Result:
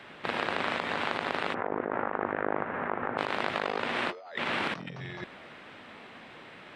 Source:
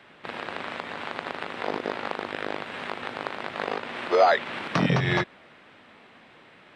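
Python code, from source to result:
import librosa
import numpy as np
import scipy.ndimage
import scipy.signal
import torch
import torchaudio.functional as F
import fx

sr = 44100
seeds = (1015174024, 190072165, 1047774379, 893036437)

y = fx.over_compress(x, sr, threshold_db=-34.0, ratio=-1.0)
y = fx.lowpass(y, sr, hz=1700.0, slope=24, at=(1.53, 3.17), fade=0.02)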